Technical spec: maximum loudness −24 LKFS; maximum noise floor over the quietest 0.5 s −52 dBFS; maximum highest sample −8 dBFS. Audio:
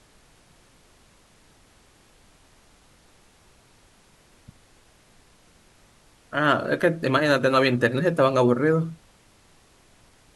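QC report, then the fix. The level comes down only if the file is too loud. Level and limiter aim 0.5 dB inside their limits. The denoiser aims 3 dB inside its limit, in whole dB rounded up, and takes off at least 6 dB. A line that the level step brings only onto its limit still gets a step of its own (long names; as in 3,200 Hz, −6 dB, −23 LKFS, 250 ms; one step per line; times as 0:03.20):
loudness −21.5 LKFS: out of spec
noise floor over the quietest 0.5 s −57 dBFS: in spec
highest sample −6.5 dBFS: out of spec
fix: level −3 dB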